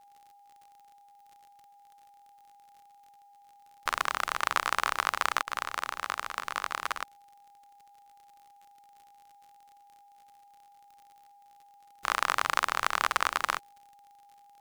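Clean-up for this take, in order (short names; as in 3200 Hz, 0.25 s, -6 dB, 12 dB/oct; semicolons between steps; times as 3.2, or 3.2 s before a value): de-click; notch 810 Hz, Q 30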